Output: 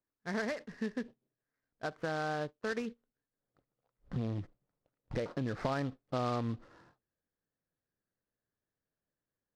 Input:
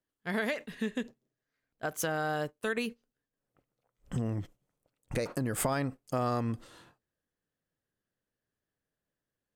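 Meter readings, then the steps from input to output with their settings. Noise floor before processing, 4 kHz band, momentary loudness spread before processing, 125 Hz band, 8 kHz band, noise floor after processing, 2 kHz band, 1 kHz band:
under -85 dBFS, -4.5 dB, 8 LU, -3.0 dB, -16.5 dB, under -85 dBFS, -4.5 dB, -3.0 dB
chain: LPF 2000 Hz 24 dB/oct; noise-modulated delay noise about 2800 Hz, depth 0.031 ms; gain -3 dB

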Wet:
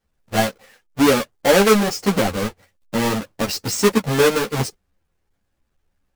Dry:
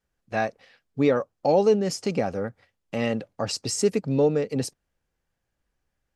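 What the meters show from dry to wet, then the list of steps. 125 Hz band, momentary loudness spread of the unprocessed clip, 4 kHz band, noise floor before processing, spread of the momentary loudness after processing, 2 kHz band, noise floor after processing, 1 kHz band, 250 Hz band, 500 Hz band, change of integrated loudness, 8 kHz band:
+5.5 dB, 11 LU, +10.5 dB, -80 dBFS, 11 LU, +12.0 dB, -72 dBFS, +8.0 dB, +6.5 dB, +4.5 dB, +6.0 dB, +8.0 dB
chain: half-waves squared off; ensemble effect; gain +5 dB

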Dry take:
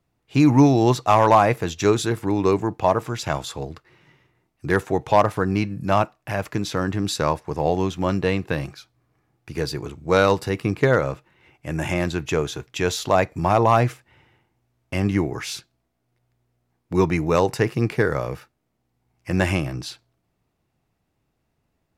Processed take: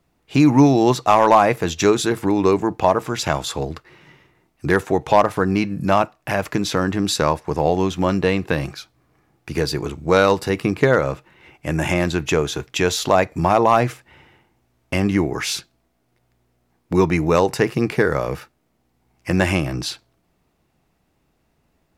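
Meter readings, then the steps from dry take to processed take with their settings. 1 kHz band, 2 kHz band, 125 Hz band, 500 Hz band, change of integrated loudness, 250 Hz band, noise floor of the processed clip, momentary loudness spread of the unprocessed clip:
+2.5 dB, +3.5 dB, +0.5 dB, +3.0 dB, +2.5 dB, +3.0 dB, -67 dBFS, 14 LU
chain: bell 110 Hz -13 dB 0.24 oct; in parallel at +3 dB: compressor, threshold -27 dBFS, peak gain reduction 15.5 dB

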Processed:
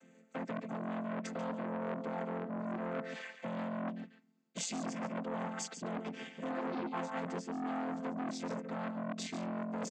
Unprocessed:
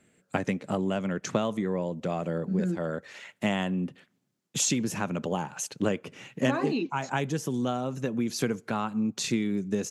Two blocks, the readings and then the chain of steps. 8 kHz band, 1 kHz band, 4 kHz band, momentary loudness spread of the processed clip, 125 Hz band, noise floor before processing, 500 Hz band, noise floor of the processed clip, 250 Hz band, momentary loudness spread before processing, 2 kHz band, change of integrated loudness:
-13.0 dB, -6.5 dB, -11.5 dB, 4 LU, -13.5 dB, -74 dBFS, -9.5 dB, -64 dBFS, -9.5 dB, 5 LU, -9.0 dB, -10.0 dB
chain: chord vocoder major triad, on F3; low shelf 320 Hz -10.5 dB; limiter -28.5 dBFS, peak gain reduction 8.5 dB; reverse; compressor 6:1, threshold -44 dBFS, peak gain reduction 11.5 dB; reverse; echo 0.141 s -9.5 dB; core saturation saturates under 1100 Hz; gain +11 dB

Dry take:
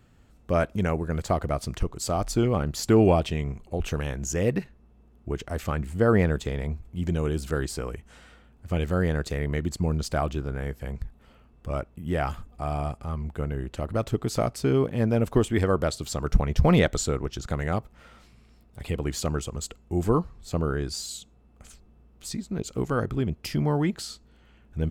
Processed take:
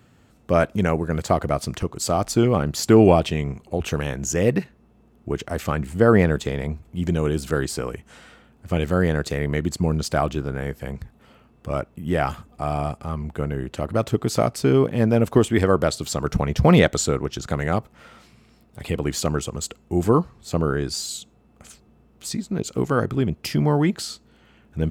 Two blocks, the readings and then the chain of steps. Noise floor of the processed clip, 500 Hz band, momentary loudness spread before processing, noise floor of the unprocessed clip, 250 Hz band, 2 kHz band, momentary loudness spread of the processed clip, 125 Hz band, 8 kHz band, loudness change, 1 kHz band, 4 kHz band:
-56 dBFS, +5.5 dB, 13 LU, -57 dBFS, +5.5 dB, +5.5 dB, 13 LU, +3.5 dB, +5.5 dB, +5.0 dB, +5.5 dB, +5.5 dB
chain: HPF 97 Hz 12 dB/oct; gain +5.5 dB

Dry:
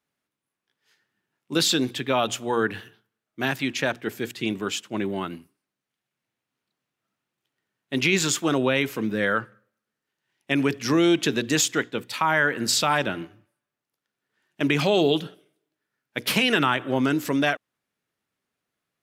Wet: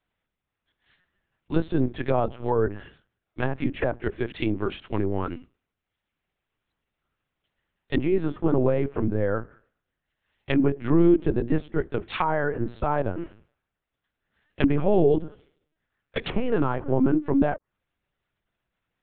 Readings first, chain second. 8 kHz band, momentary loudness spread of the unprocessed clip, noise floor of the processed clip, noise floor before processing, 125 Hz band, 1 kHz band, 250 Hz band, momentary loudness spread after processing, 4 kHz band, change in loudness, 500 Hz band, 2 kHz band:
under -40 dB, 10 LU, -85 dBFS, under -85 dBFS, +3.5 dB, -3.0 dB, +0.5 dB, 11 LU, -16.0 dB, -1.5 dB, +1.0 dB, -10.5 dB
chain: treble ducked by the level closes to 760 Hz, closed at -22 dBFS; LPC vocoder at 8 kHz pitch kept; gain +2.5 dB

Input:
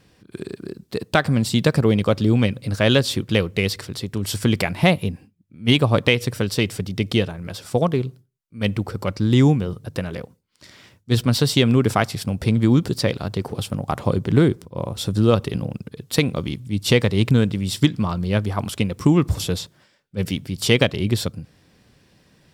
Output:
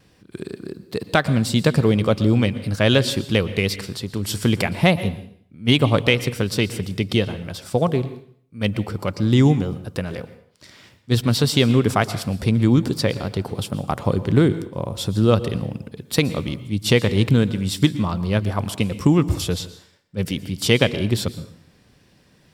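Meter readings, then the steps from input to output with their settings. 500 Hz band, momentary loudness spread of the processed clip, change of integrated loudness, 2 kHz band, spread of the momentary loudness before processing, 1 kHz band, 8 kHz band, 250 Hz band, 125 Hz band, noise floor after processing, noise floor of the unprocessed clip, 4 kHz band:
0.0 dB, 12 LU, 0.0 dB, 0.0 dB, 12 LU, 0.0 dB, 0.0 dB, 0.0 dB, 0.0 dB, -56 dBFS, -60 dBFS, 0.0 dB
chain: wow and flutter 18 cents; plate-style reverb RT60 0.59 s, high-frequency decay 0.9×, pre-delay 0.105 s, DRR 14.5 dB

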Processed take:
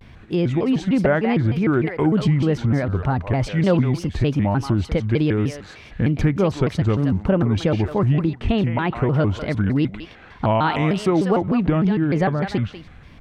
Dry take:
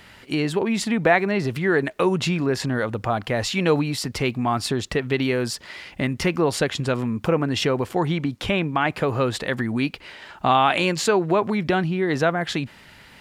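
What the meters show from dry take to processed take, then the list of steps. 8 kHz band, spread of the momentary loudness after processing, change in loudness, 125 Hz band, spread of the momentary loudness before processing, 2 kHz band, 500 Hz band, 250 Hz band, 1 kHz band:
under -10 dB, 5 LU, +2.0 dB, +7.5 dB, 7 LU, -4.5 dB, 0.0 dB, +4.5 dB, -2.5 dB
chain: RIAA curve playback; thinning echo 0.176 s, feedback 16%, high-pass 870 Hz, level -5.5 dB; shaped vibrato square 3.3 Hz, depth 250 cents; gain -3 dB

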